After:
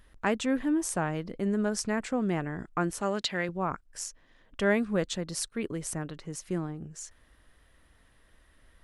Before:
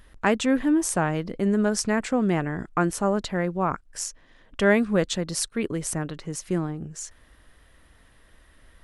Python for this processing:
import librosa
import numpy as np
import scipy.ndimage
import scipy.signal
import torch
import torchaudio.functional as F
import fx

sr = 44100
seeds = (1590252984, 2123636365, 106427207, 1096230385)

y = fx.weighting(x, sr, curve='D', at=(3.01, 3.49))
y = y * librosa.db_to_amplitude(-6.0)